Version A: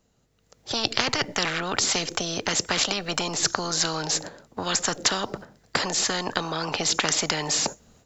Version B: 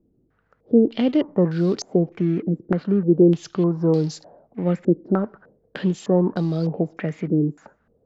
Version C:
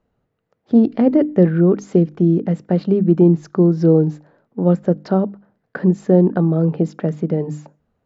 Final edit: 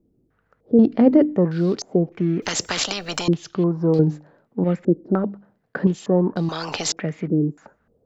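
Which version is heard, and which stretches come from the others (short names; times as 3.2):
B
0.79–1.37 from C
2.42–3.28 from A
3.99–4.64 from C
5.24–5.87 from C
6.49–6.92 from A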